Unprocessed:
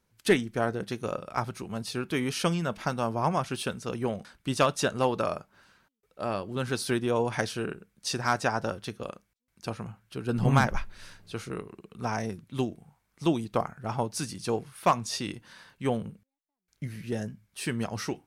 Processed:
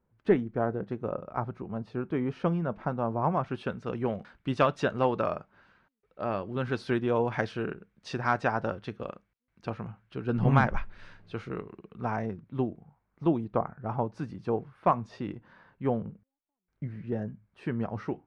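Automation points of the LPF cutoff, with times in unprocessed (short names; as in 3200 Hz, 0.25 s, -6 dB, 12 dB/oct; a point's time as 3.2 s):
3.01 s 1100 Hz
4.05 s 2400 Hz
11.75 s 2400 Hz
12.6 s 1300 Hz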